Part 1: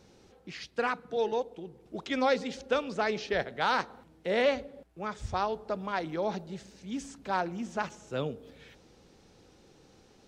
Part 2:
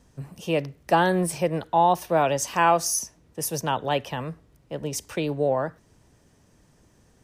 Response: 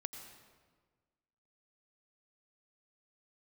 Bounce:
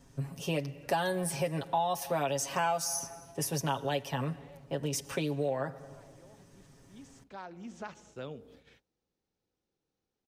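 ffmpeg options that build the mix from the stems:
-filter_complex "[0:a]agate=range=-23dB:threshold=-52dB:ratio=16:detection=peak,acompressor=threshold=-34dB:ratio=2.5,adelay=50,volume=-5dB[a];[1:a]aecho=1:1:7.3:0.77,volume=-3dB,asplit=3[b][c][d];[c]volume=-11.5dB[e];[d]apad=whole_len=455207[f];[a][f]sidechaincompress=threshold=-45dB:ratio=8:attack=16:release=1200[g];[2:a]atrim=start_sample=2205[h];[e][h]afir=irnorm=-1:irlink=0[i];[g][b][i]amix=inputs=3:normalize=0,acrossover=split=1500|4000[j][k][l];[j]acompressor=threshold=-30dB:ratio=4[m];[k]acompressor=threshold=-44dB:ratio=4[n];[l]acompressor=threshold=-35dB:ratio=4[o];[m][n][o]amix=inputs=3:normalize=0"

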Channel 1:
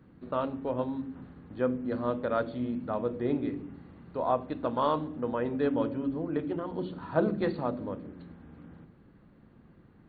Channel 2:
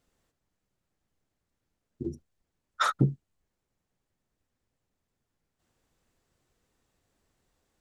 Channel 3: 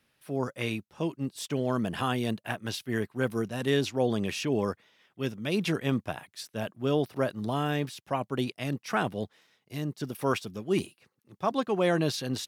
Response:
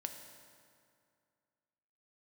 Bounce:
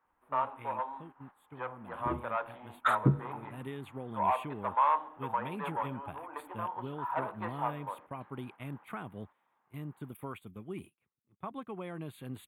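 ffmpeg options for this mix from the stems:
-filter_complex "[0:a]asoftclip=type=tanh:threshold=-25dB,highpass=f=920:t=q:w=4.1,volume=-2.5dB[a];[1:a]adelay=50,volume=-1dB,asplit=2[b][c];[c]volume=-14.5dB[d];[2:a]acompressor=threshold=-28dB:ratio=6,aecho=1:1:0.9:0.34,volume=-9dB,afade=t=in:st=3.4:d=0.24:silence=0.398107,asplit=2[e][f];[f]apad=whole_len=346430[g];[b][g]sidechaincompress=threshold=-47dB:ratio=8:attack=39:release=635[h];[3:a]atrim=start_sample=2205[i];[d][i]afir=irnorm=-1:irlink=0[j];[a][h][e][j]amix=inputs=4:normalize=0,agate=range=-10dB:threshold=-50dB:ratio=16:detection=peak,asuperstop=centerf=5400:order=4:qfactor=0.82,equalizer=f=68:t=o:w=0.86:g=4.5"

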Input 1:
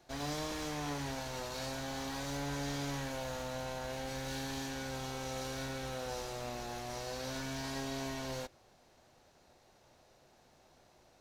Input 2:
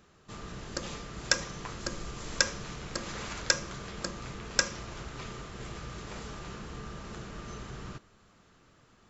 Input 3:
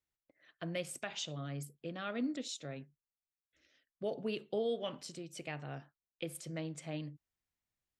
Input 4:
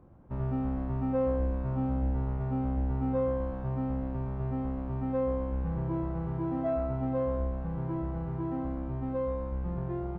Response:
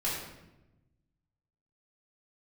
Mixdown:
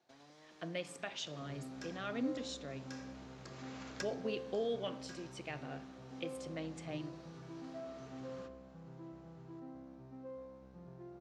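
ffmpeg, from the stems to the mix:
-filter_complex "[0:a]acompressor=threshold=-46dB:ratio=6,volume=-12dB[a];[1:a]asoftclip=type=tanh:threshold=-20.5dB,adelay=500,volume=-10.5dB,asplit=2[b][c];[c]volume=-18dB[d];[2:a]volume=-2dB,asplit=3[e][f][g];[f]volume=-21dB[h];[3:a]equalizer=f=980:t=o:w=0.77:g=-3.5,adelay=1100,volume=-15.5dB[i];[g]apad=whole_len=423155[j];[b][j]sidechaincompress=threshold=-55dB:ratio=8:attack=16:release=1310[k];[4:a]atrim=start_sample=2205[l];[d][h]amix=inputs=2:normalize=0[m];[m][l]afir=irnorm=-1:irlink=0[n];[a][k][e][i][n]amix=inputs=5:normalize=0,highpass=160,lowpass=6.3k"

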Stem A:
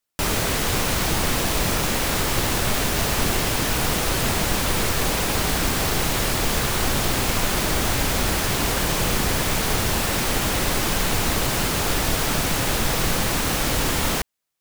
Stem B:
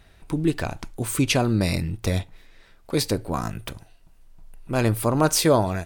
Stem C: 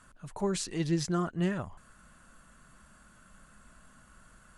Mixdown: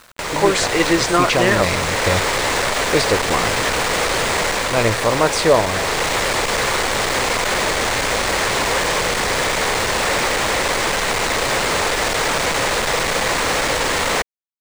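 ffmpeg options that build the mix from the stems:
-filter_complex "[0:a]asoftclip=type=tanh:threshold=-23.5dB,acrossover=split=1800|4900[a][b][c];[a]acompressor=threshold=-34dB:ratio=4[d];[b]acompressor=threshold=-44dB:ratio=4[e];[c]acompressor=threshold=-34dB:ratio=4[f];[d][e][f]amix=inputs=3:normalize=0,volume=-3.5dB[g];[1:a]lowshelf=f=140:g=8,volume=-13.5dB[h];[2:a]highpass=260,volume=2dB[i];[g][h][i]amix=inputs=3:normalize=0,equalizer=f=500:t=o:w=1:g=12,equalizer=f=1k:t=o:w=1:g=8,equalizer=f=2k:t=o:w=1:g=12,equalizer=f=4k:t=o:w=1:g=7,equalizer=f=8k:t=o:w=1:g=9,equalizer=f=16k:t=o:w=1:g=-12,dynaudnorm=f=100:g=5:m=9.5dB,acrusher=bits=6:mix=0:aa=0.000001"

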